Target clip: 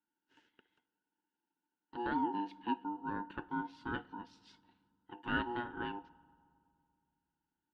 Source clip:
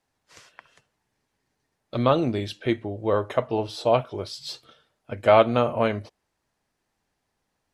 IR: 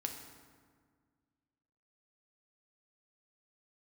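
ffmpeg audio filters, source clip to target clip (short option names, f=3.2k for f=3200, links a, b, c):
-filter_complex "[0:a]asplit=3[a][b][c];[a]bandpass=f=300:t=q:w=8,volume=0dB[d];[b]bandpass=f=870:t=q:w=8,volume=-6dB[e];[c]bandpass=f=2.24k:t=q:w=8,volume=-9dB[f];[d][e][f]amix=inputs=3:normalize=0,aeval=exprs='val(0)*sin(2*PI*600*n/s)':c=same,asplit=2[g][h];[1:a]atrim=start_sample=2205,asetrate=29547,aresample=44100[i];[h][i]afir=irnorm=-1:irlink=0,volume=-18.5dB[j];[g][j]amix=inputs=2:normalize=0"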